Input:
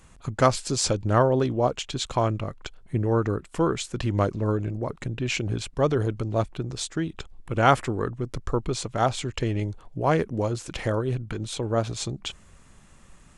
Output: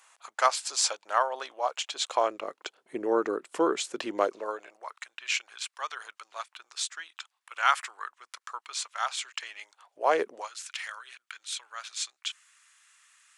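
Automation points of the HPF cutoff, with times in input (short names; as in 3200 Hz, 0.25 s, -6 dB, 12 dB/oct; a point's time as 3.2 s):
HPF 24 dB/oct
1.68 s 750 Hz
2.62 s 330 Hz
4.12 s 330 Hz
5 s 1100 Hz
9.68 s 1100 Hz
10.27 s 340 Hz
10.51 s 1400 Hz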